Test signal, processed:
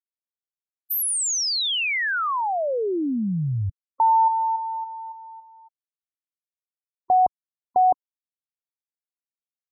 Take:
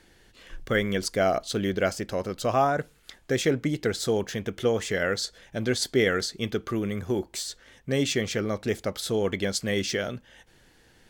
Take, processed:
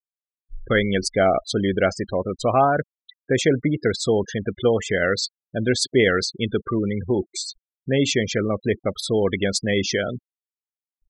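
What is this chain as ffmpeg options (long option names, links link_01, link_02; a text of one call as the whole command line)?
ffmpeg -i in.wav -af "acontrast=70,afftfilt=real='re*gte(hypot(re,im),0.0631)':imag='im*gte(hypot(re,im),0.0631)':win_size=1024:overlap=0.75,volume=-1dB" out.wav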